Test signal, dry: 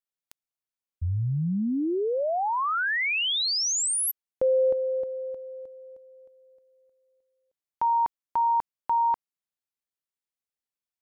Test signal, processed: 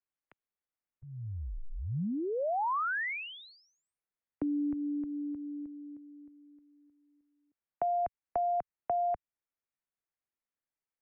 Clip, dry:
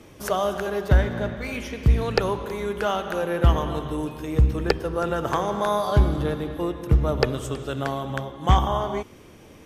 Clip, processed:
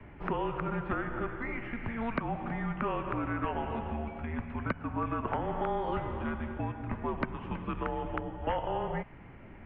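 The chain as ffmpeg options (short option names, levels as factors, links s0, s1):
-filter_complex "[0:a]highpass=f=160:t=q:w=0.5412,highpass=f=160:t=q:w=1.307,lowpass=f=2600:t=q:w=0.5176,lowpass=f=2600:t=q:w=0.7071,lowpass=f=2600:t=q:w=1.932,afreqshift=-230,acrossover=split=180|730|1500[s0][s1][s2][s3];[s0]acompressor=threshold=0.0112:ratio=4[s4];[s1]acompressor=threshold=0.0141:ratio=4[s5];[s2]acompressor=threshold=0.0158:ratio=4[s6];[s3]acompressor=threshold=0.00708:ratio=4[s7];[s4][s5][s6][s7]amix=inputs=4:normalize=0"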